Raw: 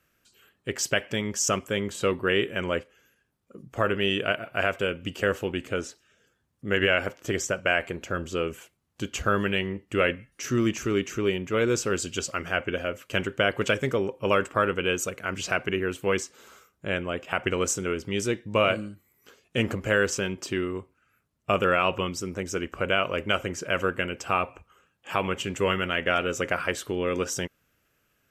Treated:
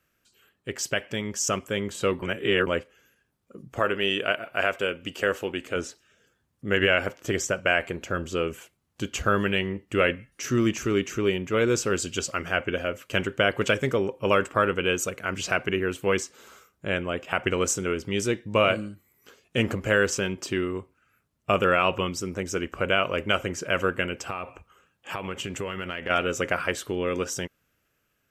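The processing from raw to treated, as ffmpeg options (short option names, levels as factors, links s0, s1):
-filter_complex "[0:a]asettb=1/sr,asplit=3[s0][s1][s2];[s0]atrim=end=3.794[s3];[s1]atrim=start=3.79:end=5.76,asetpts=PTS-STARTPTS,afade=t=in:d=0.004:c=qsin,afade=t=out:st=1.966:d=0.004:c=qsin,equalizer=f=110:t=o:w=2.1:g=-9[s4];[s2]atrim=start=5.756[s5];[s3][s4]acrossfade=d=0.004:c1=hsin:c2=qsin[s6];[s6][s5]acrossfade=d=0.004:c1=qsin:c2=hsin,asplit=3[s7][s8][s9];[s7]afade=t=out:st=24.24:d=0.02[s10];[s8]acompressor=threshold=0.0355:ratio=6:attack=3.2:release=140:knee=1:detection=peak,afade=t=in:st=24.24:d=0.02,afade=t=out:st=26.09:d=0.02[s11];[s9]afade=t=in:st=26.09:d=0.02[s12];[s10][s11][s12]amix=inputs=3:normalize=0,asplit=3[s13][s14][s15];[s13]atrim=end=2.222[s16];[s14]atrim=start=2.218:end=2.672,asetpts=PTS-STARTPTS,areverse[s17];[s15]atrim=start=2.668[s18];[s16][s17]acrossfade=d=0.004:c1=hsin:c2=hsin[s19];[s19][s18]acrossfade=d=0.004:c1=hsin:c2=hsin,dynaudnorm=f=510:g=7:m=1.58,volume=0.75"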